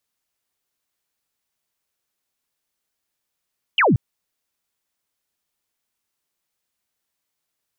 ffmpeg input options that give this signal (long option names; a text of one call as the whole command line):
ffmpeg -f lavfi -i "aevalsrc='0.237*clip(t/0.002,0,1)*clip((0.18-t)/0.002,0,1)*sin(2*PI*3200*0.18/log(95/3200)*(exp(log(95/3200)*t/0.18)-1))':duration=0.18:sample_rate=44100" out.wav